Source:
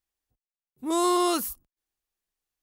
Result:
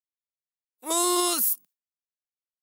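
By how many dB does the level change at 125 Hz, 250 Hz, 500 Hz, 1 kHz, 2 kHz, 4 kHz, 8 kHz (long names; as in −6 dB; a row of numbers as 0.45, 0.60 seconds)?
can't be measured, −4.0 dB, −3.0 dB, −2.5 dB, +0.5 dB, +4.0 dB, +9.0 dB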